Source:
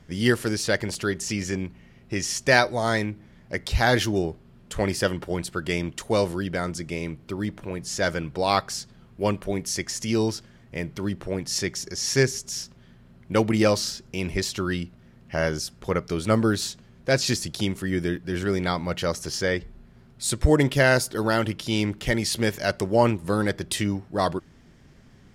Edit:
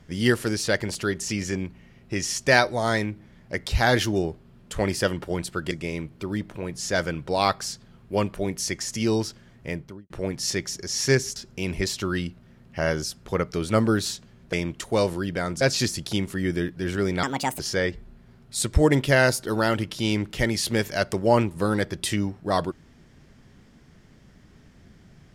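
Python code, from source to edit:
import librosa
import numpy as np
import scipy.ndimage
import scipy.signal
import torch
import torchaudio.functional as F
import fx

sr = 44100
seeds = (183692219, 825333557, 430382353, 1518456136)

y = fx.studio_fade_out(x, sr, start_s=10.75, length_s=0.43)
y = fx.edit(y, sr, fx.move(start_s=5.71, length_s=1.08, to_s=17.09),
    fx.cut(start_s=12.44, length_s=1.48),
    fx.speed_span(start_s=18.71, length_s=0.56, speed=1.55), tone=tone)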